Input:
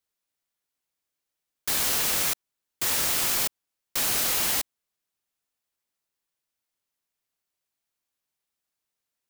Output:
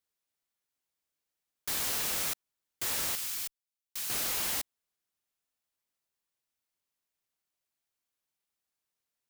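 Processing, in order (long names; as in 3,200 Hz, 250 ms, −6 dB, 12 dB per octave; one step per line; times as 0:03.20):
0:03.15–0:04.10: guitar amp tone stack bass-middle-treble 5-5-5
soft clipping −25 dBFS, distortion −11 dB
level −3 dB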